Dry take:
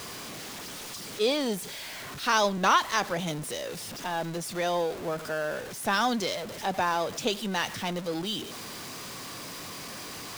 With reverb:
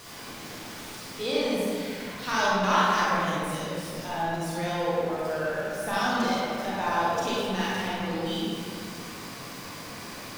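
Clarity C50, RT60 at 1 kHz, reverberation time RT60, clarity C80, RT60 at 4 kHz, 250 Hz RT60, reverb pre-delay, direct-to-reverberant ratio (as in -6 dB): -4.5 dB, 2.1 s, 2.1 s, -2.5 dB, 1.3 s, 2.8 s, 31 ms, -8.0 dB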